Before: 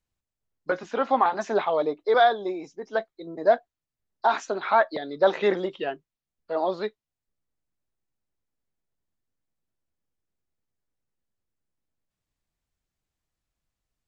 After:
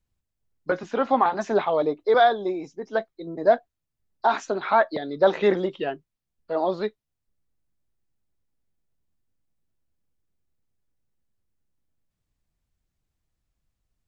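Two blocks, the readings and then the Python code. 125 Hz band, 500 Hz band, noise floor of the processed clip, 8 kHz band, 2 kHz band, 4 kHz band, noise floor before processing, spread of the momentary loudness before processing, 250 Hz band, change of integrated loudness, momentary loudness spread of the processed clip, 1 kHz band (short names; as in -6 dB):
+5.5 dB, +1.5 dB, -82 dBFS, n/a, 0.0 dB, 0.0 dB, under -85 dBFS, 12 LU, +4.0 dB, +1.5 dB, 12 LU, +1.0 dB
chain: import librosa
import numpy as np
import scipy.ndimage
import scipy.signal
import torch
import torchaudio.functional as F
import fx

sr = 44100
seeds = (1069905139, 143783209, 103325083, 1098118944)

y = fx.low_shelf(x, sr, hz=260.0, db=8.5)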